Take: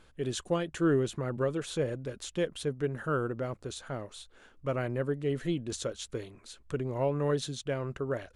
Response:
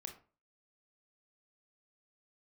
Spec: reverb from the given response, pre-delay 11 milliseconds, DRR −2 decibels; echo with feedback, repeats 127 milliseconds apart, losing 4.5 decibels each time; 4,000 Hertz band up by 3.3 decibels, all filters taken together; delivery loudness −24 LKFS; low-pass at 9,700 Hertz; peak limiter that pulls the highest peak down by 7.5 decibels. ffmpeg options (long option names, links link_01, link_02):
-filter_complex "[0:a]lowpass=9700,equalizer=frequency=4000:width_type=o:gain=4,alimiter=limit=-23.5dB:level=0:latency=1,aecho=1:1:127|254|381|508|635|762|889|1016|1143:0.596|0.357|0.214|0.129|0.0772|0.0463|0.0278|0.0167|0.01,asplit=2[link_01][link_02];[1:a]atrim=start_sample=2205,adelay=11[link_03];[link_02][link_03]afir=irnorm=-1:irlink=0,volume=6dB[link_04];[link_01][link_04]amix=inputs=2:normalize=0,volume=5dB"